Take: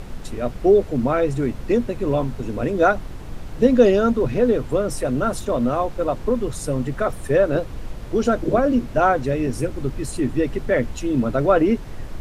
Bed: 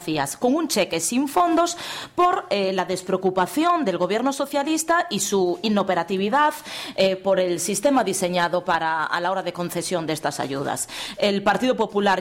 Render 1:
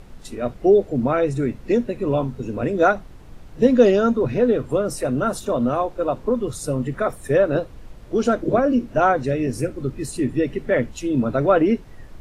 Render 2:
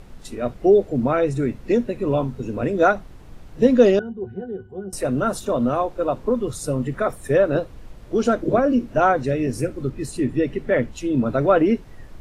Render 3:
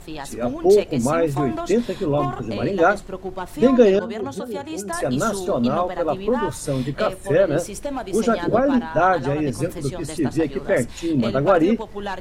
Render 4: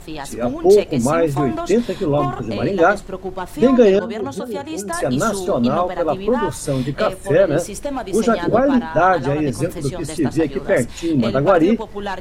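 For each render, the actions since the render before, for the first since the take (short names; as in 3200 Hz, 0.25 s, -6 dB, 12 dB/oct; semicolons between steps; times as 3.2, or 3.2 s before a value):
noise print and reduce 9 dB
3.99–4.93 octave resonator F#, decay 0.13 s; 9.89–11.26 high shelf 5500 Hz -4 dB
add bed -9.5 dB
gain +3 dB; limiter -2 dBFS, peak gain reduction 2 dB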